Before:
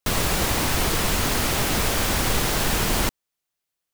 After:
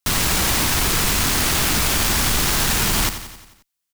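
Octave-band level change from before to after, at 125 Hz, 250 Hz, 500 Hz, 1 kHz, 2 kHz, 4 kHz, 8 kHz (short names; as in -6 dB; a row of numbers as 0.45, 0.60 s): +2.0, +1.5, -1.5, +2.0, +4.0, +5.0, +6.5 dB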